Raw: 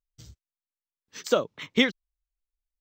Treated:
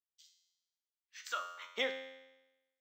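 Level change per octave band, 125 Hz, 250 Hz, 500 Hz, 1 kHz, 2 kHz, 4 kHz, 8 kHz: below −30 dB, −25.5 dB, −14.5 dB, −6.0 dB, −10.5 dB, −11.5 dB, −11.0 dB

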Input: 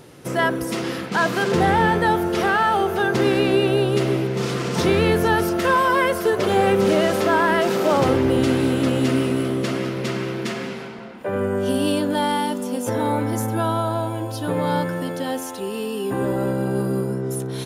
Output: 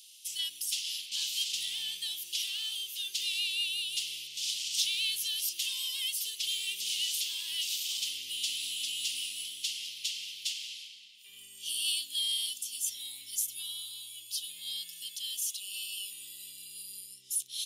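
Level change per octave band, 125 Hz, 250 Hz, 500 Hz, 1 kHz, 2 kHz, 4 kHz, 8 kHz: below −40 dB, below −40 dB, below −40 dB, below −40 dB, −18.0 dB, +1.5 dB, +2.5 dB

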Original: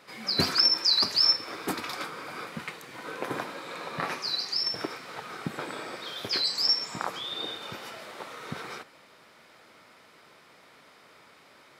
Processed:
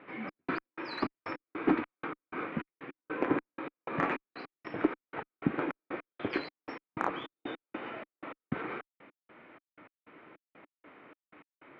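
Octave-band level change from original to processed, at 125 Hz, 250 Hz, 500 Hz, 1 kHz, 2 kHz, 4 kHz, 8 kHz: −2.0 dB, +5.5 dB, +1.0 dB, −1.5 dB, −2.5 dB, −26.0 dB, below −30 dB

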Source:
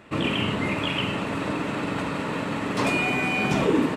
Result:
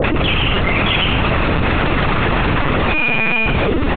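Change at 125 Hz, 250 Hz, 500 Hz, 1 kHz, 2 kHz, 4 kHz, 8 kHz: +12.0 dB, +5.5 dB, +7.5 dB, +9.5 dB, +10.5 dB, +10.5 dB, below −30 dB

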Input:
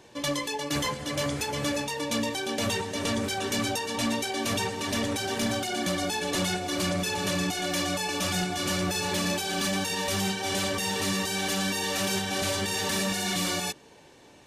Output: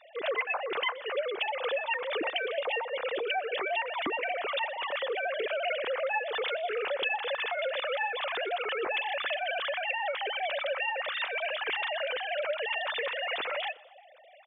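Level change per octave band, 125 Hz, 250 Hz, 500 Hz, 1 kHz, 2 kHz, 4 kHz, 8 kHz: below −35 dB, −19.5 dB, +0.5 dB, −0.5 dB, +1.0 dB, −5.5 dB, below −40 dB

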